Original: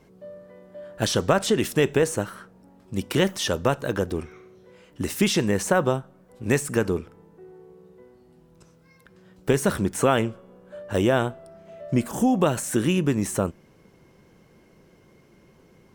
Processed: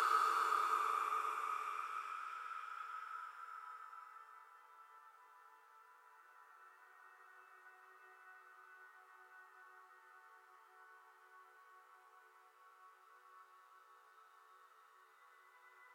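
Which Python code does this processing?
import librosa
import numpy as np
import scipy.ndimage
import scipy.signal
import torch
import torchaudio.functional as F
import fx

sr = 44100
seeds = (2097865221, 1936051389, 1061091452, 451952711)

y = fx.paulstretch(x, sr, seeds[0], factor=15.0, window_s=0.25, from_s=6.91)
y = fx.ladder_highpass(y, sr, hz=1200.0, resonance_pct=75)
y = F.gain(torch.from_numpy(y), 9.5).numpy()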